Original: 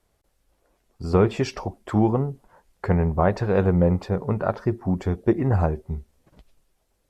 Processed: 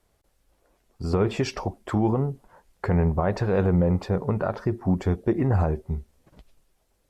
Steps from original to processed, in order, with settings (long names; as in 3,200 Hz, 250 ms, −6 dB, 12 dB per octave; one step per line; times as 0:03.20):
brickwall limiter −14.5 dBFS, peak gain reduction 7.5 dB
level +1 dB